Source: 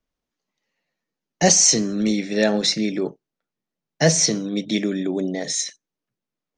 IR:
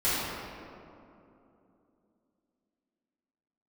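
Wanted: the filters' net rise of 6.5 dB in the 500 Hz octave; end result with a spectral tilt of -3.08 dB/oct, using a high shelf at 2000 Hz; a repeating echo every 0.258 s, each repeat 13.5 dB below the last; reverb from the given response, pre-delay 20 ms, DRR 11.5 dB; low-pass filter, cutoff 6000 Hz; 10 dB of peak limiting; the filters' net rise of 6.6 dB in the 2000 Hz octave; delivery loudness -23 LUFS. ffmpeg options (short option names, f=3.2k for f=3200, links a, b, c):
-filter_complex "[0:a]lowpass=6k,equalizer=f=500:t=o:g=7.5,highshelf=f=2k:g=3,equalizer=f=2k:t=o:g=5.5,alimiter=limit=-9dB:level=0:latency=1,aecho=1:1:258|516:0.211|0.0444,asplit=2[a][b];[1:a]atrim=start_sample=2205,adelay=20[c];[b][c]afir=irnorm=-1:irlink=0,volume=-24.5dB[d];[a][d]amix=inputs=2:normalize=0,volume=-3.5dB"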